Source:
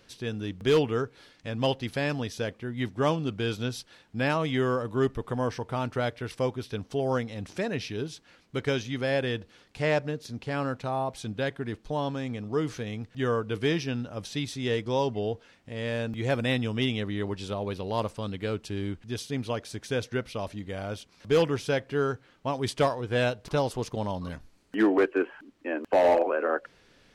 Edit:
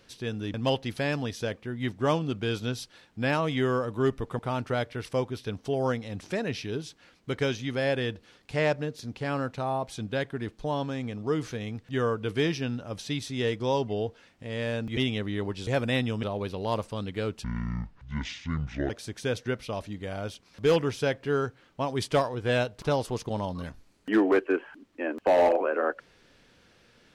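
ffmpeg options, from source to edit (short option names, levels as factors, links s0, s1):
-filter_complex "[0:a]asplit=8[s0][s1][s2][s3][s4][s5][s6][s7];[s0]atrim=end=0.542[s8];[s1]atrim=start=1.508:end=5.362[s9];[s2]atrim=start=5.648:end=16.232[s10];[s3]atrim=start=16.788:end=17.492[s11];[s4]atrim=start=16.228:end=16.792[s12];[s5]atrim=start=17.488:end=18.704[s13];[s6]atrim=start=18.7:end=19.56,asetpts=PTS-STARTPTS,asetrate=26019,aresample=44100,atrim=end_sample=64281,asetpts=PTS-STARTPTS[s14];[s7]atrim=start=19.556[s15];[s8][s9]acrossfade=d=0.004:c1=hsin:c2=hsin[s16];[s16][s10]acrossfade=d=0.004:c1=hsin:c2=hsin[s17];[s17][s11]acrossfade=d=0.004:c1=hsin:c2=hsin[s18];[s18][s12]acrossfade=d=0.004:c1=hsin:c2=hsin[s19];[s19][s13]acrossfade=d=0.004:c1=hsin:c2=hsin[s20];[s20][s14]acrossfade=d=0.004:c1=hsin:c2=hsin[s21];[s21][s15]acrossfade=d=0.004:c1=hsin:c2=hsin"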